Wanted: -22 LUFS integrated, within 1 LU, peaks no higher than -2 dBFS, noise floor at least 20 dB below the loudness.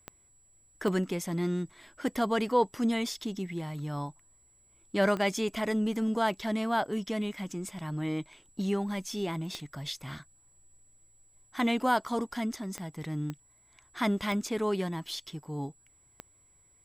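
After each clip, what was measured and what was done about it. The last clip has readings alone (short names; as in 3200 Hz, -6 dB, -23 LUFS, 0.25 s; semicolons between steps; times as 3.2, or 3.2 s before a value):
clicks 8; steady tone 7800 Hz; tone level -62 dBFS; loudness -31.5 LUFS; peak -13.5 dBFS; loudness target -22.0 LUFS
-> de-click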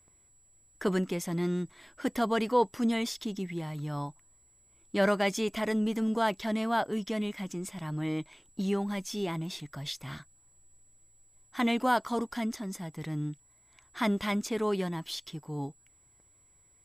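clicks 0; steady tone 7800 Hz; tone level -62 dBFS
-> notch 7800 Hz, Q 30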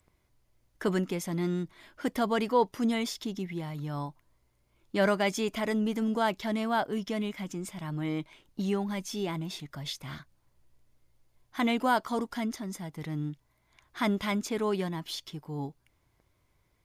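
steady tone none; loudness -31.5 LUFS; peak -13.5 dBFS; loudness target -22.0 LUFS
-> gain +9.5 dB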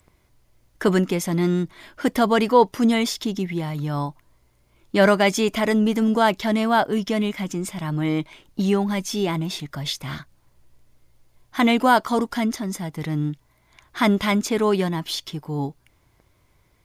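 loudness -22.0 LUFS; peak -4.0 dBFS; noise floor -62 dBFS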